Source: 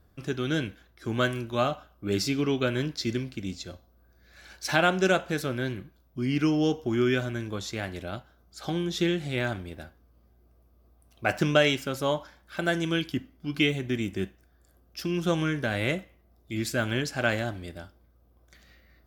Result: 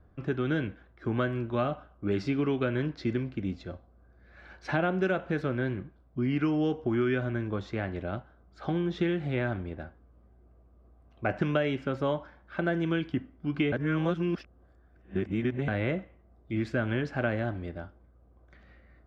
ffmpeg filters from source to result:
-filter_complex "[0:a]asplit=3[a][b][c];[a]atrim=end=13.722[d];[b]atrim=start=13.718:end=15.682,asetpts=PTS-STARTPTS,areverse[e];[c]atrim=start=15.678[f];[d][e]acrossfade=d=0.004:c1=hsin:c2=hsin[g];[g][f]acrossfade=d=0.004:c1=hsin:c2=hsin,lowpass=1.7k,acrossover=split=640|1300[h][i][j];[h]acompressor=threshold=-28dB:ratio=4[k];[i]acompressor=threshold=-44dB:ratio=4[l];[j]acompressor=threshold=-37dB:ratio=4[m];[k][l][m]amix=inputs=3:normalize=0,volume=2.5dB"

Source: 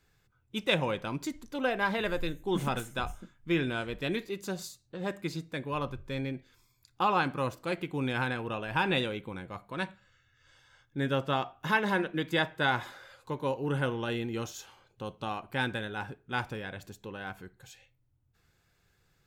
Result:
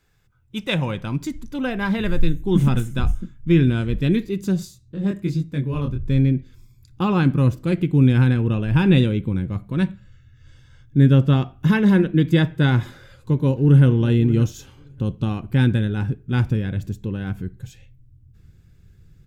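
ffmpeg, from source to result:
-filter_complex "[0:a]asplit=3[a][b][c];[a]afade=t=out:st=4.64:d=0.02[d];[b]flanger=delay=20:depth=5.9:speed=1.1,afade=t=in:st=4.64:d=0.02,afade=t=out:st=6.01:d=0.02[e];[c]afade=t=in:st=6.01:d=0.02[f];[d][e][f]amix=inputs=3:normalize=0,asplit=2[g][h];[h]afade=t=in:st=12.98:d=0.01,afade=t=out:st=13.87:d=0.01,aecho=0:1:580|1160:0.16788|0.016788[i];[g][i]amix=inputs=2:normalize=0,bandreject=f=4.3k:w=22,asubboost=boost=11:cutoff=230,volume=3.5dB"

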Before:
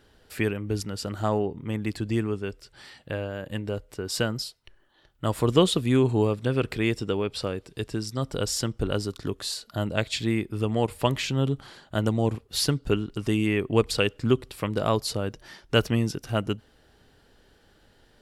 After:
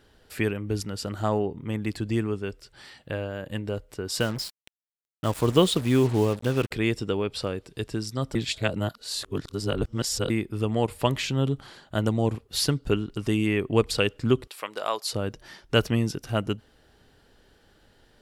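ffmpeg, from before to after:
-filter_complex "[0:a]asettb=1/sr,asplit=3[a][b][c];[a]atrim=end=4.204[d];[b]atrim=start=4.2:end=6.71,asetpts=PTS-STARTPTS,afade=t=in:d=0.004:c=qsin,afade=t=out:st=2.506:d=0.004:c=qsin,acrusher=bits=5:mix=0:aa=0.5[e];[c]atrim=start=6.706[f];[d][e]acrossfade=d=0.004:c1=hsin:c2=qsin[g];[g][f]acrossfade=d=0.004:c1=qsin:c2=hsin,asettb=1/sr,asplit=3[h][i][j];[h]atrim=end=14.474[k];[i]atrim=start=14.47:end=15.13,asetpts=PTS-STARTPTS,afade=t=in:d=0.004:c=qsin,afade=t=out:st=0.656:d=0.004:c=qsin,highpass=670[l];[j]atrim=start=15.126[m];[k][l]acrossfade=d=0.004:c1=hsin:c2=qsin[n];[n][m]acrossfade=d=0.004:c1=qsin:c2=hsin,asplit=3[o][p][q];[o]atrim=end=8.352[r];[p]atrim=start=8.348:end=10.302,asetpts=PTS-STARTPTS,areverse[s];[q]atrim=start=10.298[t];[r][s]acrossfade=d=0.004:c1=hsin:c2=hsin[u];[u][t]acrossfade=d=0.004:c1=hsin:c2=hsin"

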